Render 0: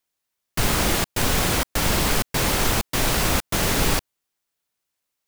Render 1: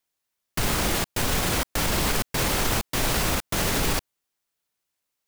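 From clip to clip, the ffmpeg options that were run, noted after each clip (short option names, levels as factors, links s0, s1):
-af "alimiter=limit=0.224:level=0:latency=1:release=38,volume=0.891"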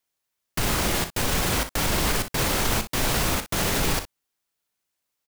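-af "aecho=1:1:37|60:0.237|0.237"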